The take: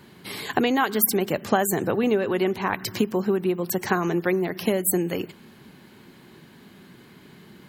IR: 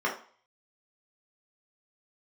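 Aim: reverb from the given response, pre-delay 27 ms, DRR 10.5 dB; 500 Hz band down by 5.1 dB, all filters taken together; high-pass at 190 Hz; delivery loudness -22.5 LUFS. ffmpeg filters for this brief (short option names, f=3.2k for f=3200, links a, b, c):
-filter_complex "[0:a]highpass=190,equalizer=f=500:t=o:g=-7,asplit=2[a][b];[1:a]atrim=start_sample=2205,adelay=27[c];[b][c]afir=irnorm=-1:irlink=0,volume=-21.5dB[d];[a][d]amix=inputs=2:normalize=0,volume=3.5dB"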